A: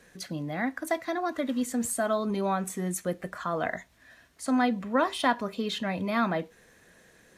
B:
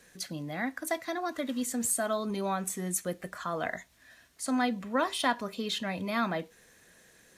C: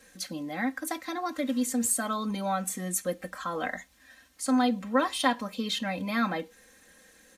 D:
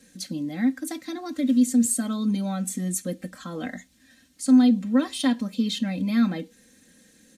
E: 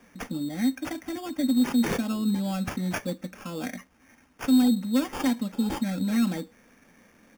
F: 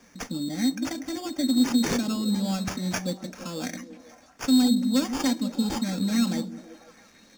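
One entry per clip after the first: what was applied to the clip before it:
high-shelf EQ 3,000 Hz +8 dB; level −4 dB
comb filter 3.8 ms, depth 78%
octave-band graphic EQ 125/250/1,000/4,000/8,000 Hz +11/+11/−7/+4/+5 dB; level −3.5 dB
in parallel at 0 dB: brickwall limiter −17.5 dBFS, peak gain reduction 8.5 dB; on the sum: sample-rate reduction 4,000 Hz, jitter 0%; level −7 dB
flat-topped bell 5,400 Hz +8 dB 1.2 octaves; echo through a band-pass that steps 165 ms, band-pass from 240 Hz, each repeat 0.7 octaves, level −7.5 dB

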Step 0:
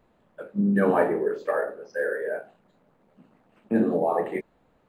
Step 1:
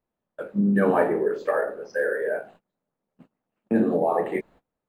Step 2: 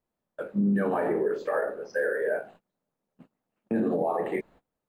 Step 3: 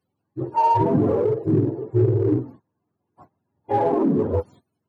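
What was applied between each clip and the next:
noise gate −52 dBFS, range −25 dB; in parallel at +0.5 dB: downward compressor, threshold −29 dBFS, peak gain reduction 13 dB; on the sum: level −1.5 dB
brickwall limiter −17 dBFS, peak gain reduction 8.5 dB; level −1 dB
frequency axis turned over on the octave scale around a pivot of 430 Hz; in parallel at −10 dB: hard clipping −32.5 dBFS, distortion −6 dB; on the sum: level +7.5 dB

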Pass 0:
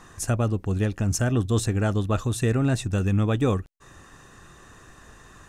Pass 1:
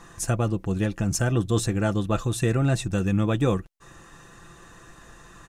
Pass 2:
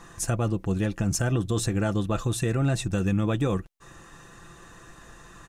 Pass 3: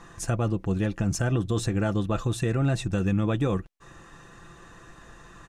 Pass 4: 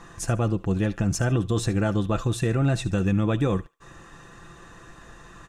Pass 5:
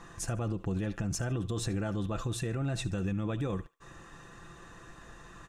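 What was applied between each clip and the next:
comb filter 5.9 ms, depth 45%
brickwall limiter −16 dBFS, peak gain reduction 6 dB
high-shelf EQ 7,900 Hz −10.5 dB
feedback echo with a high-pass in the loop 73 ms, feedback 25%, high-pass 930 Hz, level −17 dB; level +2 dB
brickwall limiter −21 dBFS, peak gain reduction 7 dB; level −4 dB

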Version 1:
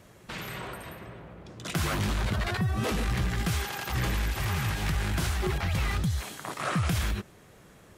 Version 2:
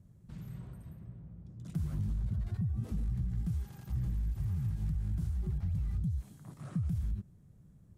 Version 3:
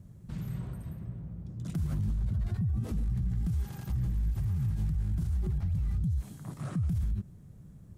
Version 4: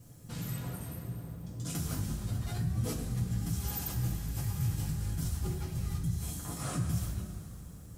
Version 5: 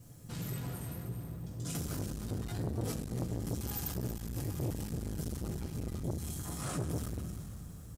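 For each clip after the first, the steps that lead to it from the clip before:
drawn EQ curve 160 Hz 0 dB, 410 Hz −20 dB, 2,600 Hz −30 dB, 8,800 Hz −20 dB; downward compressor, threshold −30 dBFS, peak gain reduction 6 dB
brickwall limiter −32.5 dBFS, peak gain reduction 8 dB; level +8 dB
bass and treble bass −8 dB, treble +9 dB; coupled-rooms reverb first 0.23 s, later 3.1 s, from −18 dB, DRR −6 dB
single-tap delay 316 ms −12 dB; saturating transformer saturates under 470 Hz

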